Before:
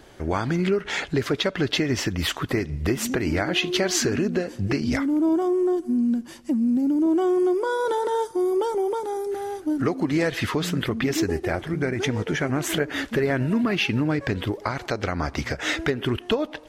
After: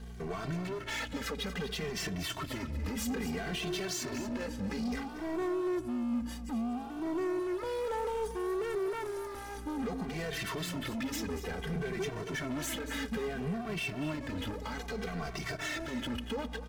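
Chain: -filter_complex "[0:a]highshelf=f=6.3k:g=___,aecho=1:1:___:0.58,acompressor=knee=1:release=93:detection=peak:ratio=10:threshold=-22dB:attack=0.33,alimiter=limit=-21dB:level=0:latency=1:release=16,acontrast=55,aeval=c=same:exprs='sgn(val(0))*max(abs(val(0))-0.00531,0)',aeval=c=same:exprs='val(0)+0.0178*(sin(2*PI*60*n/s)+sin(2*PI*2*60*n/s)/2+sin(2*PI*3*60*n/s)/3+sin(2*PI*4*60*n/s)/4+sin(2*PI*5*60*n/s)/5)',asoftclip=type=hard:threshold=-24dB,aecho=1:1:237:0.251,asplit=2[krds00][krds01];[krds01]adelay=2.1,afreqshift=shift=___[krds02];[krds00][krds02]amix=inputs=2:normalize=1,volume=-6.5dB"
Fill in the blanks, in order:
2.5, 4.5, -0.6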